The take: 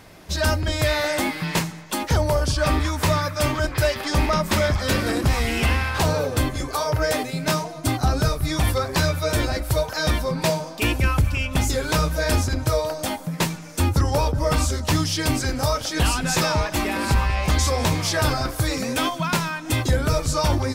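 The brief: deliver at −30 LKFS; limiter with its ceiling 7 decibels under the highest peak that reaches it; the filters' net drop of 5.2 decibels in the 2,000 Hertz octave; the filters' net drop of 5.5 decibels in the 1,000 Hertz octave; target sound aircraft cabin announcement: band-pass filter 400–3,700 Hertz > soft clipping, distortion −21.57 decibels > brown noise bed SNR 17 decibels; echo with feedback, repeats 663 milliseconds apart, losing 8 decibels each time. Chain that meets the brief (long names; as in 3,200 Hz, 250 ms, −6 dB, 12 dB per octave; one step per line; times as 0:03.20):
parametric band 1,000 Hz −5.5 dB
parametric band 2,000 Hz −4.5 dB
brickwall limiter −17.5 dBFS
band-pass filter 400–3,700 Hz
repeating echo 663 ms, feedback 40%, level −8 dB
soft clipping −21.5 dBFS
brown noise bed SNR 17 dB
level +2.5 dB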